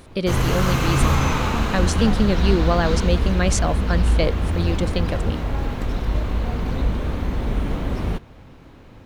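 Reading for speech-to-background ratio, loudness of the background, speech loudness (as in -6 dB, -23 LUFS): -1.5 dB, -23.0 LUFS, -24.5 LUFS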